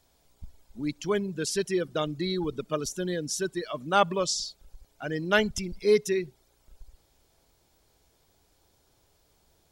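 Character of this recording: noise floor -67 dBFS; spectral tilt -4.0 dB/octave

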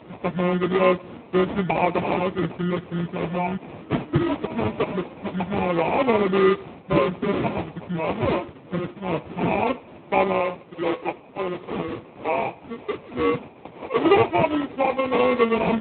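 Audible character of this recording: a quantiser's noise floor 8-bit, dither triangular; phasing stages 8, 0.22 Hz, lowest notch 550–1900 Hz; aliases and images of a low sample rate 1.6 kHz, jitter 0%; AMR-NB

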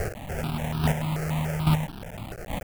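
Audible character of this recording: a quantiser's noise floor 6-bit, dither triangular; chopped level 1.2 Hz, depth 60%, duty 10%; aliases and images of a low sample rate 1.1 kHz, jitter 20%; notches that jump at a steady rate 6.9 Hz 960–2000 Hz

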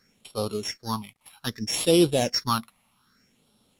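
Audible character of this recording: a buzz of ramps at a fixed pitch in blocks of 8 samples; phasing stages 6, 0.63 Hz, lowest notch 390–1800 Hz; a quantiser's noise floor 12-bit, dither none; Vorbis

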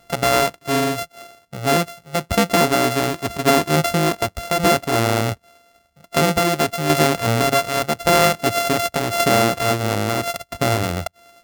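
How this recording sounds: a buzz of ramps at a fixed pitch in blocks of 64 samples; tremolo saw down 0.87 Hz, depth 50%

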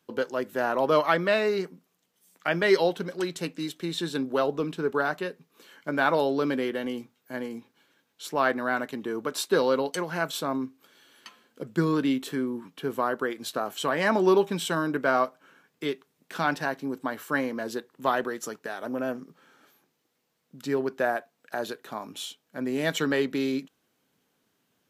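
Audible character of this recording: noise floor -75 dBFS; spectral tilt -3.5 dB/octave

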